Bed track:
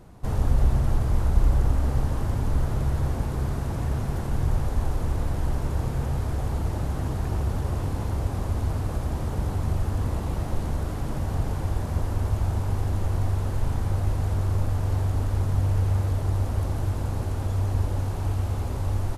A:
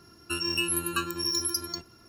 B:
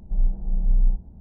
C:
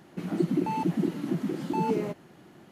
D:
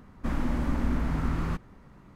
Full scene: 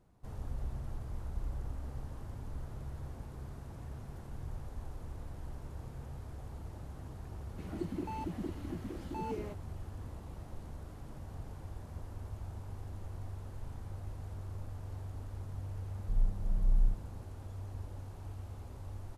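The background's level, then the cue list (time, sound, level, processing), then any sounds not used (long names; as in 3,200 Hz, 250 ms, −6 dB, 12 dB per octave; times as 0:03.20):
bed track −18.5 dB
0:07.41: mix in C −10.5 dB + low-shelf EQ 140 Hz −10 dB
0:15.98: mix in B −8.5 dB
not used: A, D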